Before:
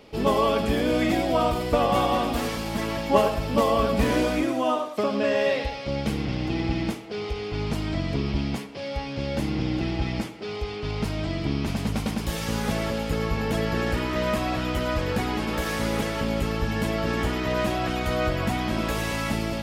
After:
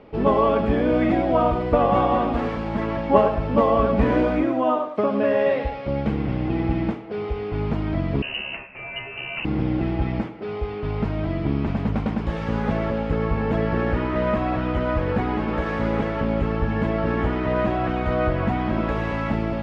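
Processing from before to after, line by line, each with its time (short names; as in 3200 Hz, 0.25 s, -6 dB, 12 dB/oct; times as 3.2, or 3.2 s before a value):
8.22–9.45 inverted band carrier 2900 Hz
whole clip: LPF 1700 Hz 12 dB/oct; gain +3.5 dB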